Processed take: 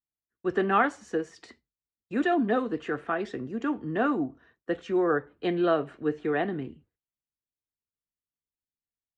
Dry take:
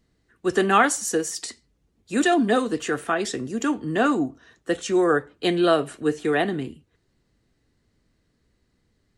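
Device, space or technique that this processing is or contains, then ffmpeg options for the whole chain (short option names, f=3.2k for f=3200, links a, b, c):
hearing-loss simulation: -af "lowpass=2.2k,agate=range=-33dB:threshold=-47dB:ratio=3:detection=peak,volume=-5dB"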